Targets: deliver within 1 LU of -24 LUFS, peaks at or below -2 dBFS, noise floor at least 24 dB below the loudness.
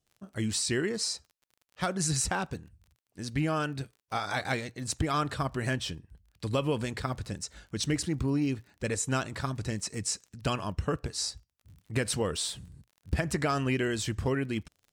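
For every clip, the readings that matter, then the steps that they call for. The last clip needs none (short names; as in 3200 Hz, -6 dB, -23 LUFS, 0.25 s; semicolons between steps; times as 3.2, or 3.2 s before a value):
ticks 34/s; loudness -31.5 LUFS; peak -16.0 dBFS; loudness target -24.0 LUFS
-> de-click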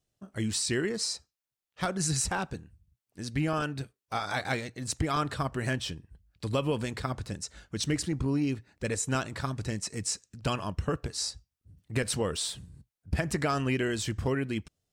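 ticks 0.40/s; loudness -31.5 LUFS; peak -16.0 dBFS; loudness target -24.0 LUFS
-> gain +7.5 dB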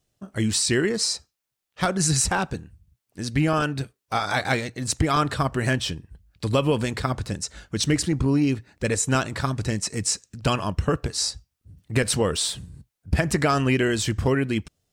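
loudness -24.5 LUFS; peak -8.5 dBFS; noise floor -82 dBFS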